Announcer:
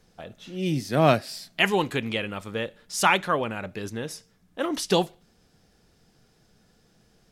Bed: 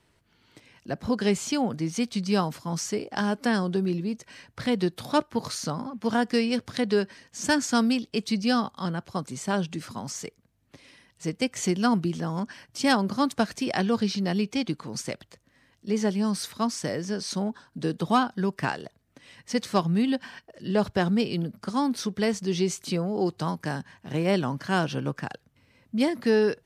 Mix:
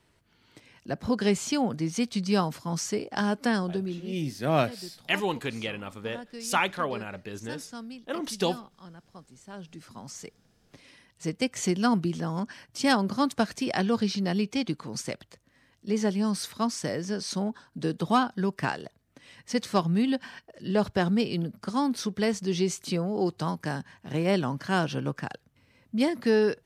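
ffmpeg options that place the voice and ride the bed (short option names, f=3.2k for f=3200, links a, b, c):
-filter_complex "[0:a]adelay=3500,volume=-5dB[a];[1:a]volume=16.5dB,afade=t=out:st=3.43:d=0.82:silence=0.133352,afade=t=in:st=9.5:d=1.43:silence=0.141254[b];[a][b]amix=inputs=2:normalize=0"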